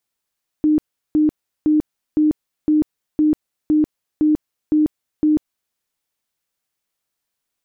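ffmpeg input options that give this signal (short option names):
-f lavfi -i "aevalsrc='0.266*sin(2*PI*305*mod(t,0.51))*lt(mod(t,0.51),43/305)':d=5.1:s=44100"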